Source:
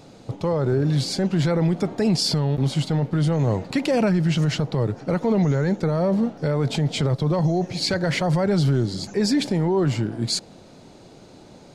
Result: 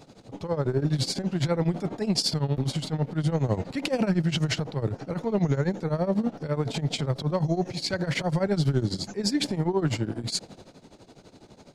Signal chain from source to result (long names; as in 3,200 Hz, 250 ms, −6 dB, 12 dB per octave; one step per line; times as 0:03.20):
transient designer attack −9 dB, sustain +4 dB
shaped tremolo triangle 12 Hz, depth 90%